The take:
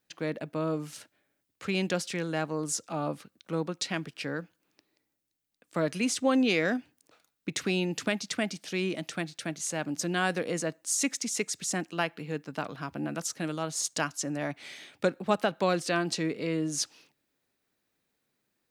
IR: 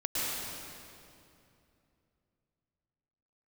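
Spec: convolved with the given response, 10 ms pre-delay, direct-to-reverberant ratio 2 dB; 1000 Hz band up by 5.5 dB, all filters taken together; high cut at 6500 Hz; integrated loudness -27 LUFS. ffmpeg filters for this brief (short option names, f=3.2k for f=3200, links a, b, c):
-filter_complex "[0:a]lowpass=6.5k,equalizer=f=1k:t=o:g=7.5,asplit=2[a][b];[1:a]atrim=start_sample=2205,adelay=10[c];[b][c]afir=irnorm=-1:irlink=0,volume=-10dB[d];[a][d]amix=inputs=2:normalize=0,volume=1dB"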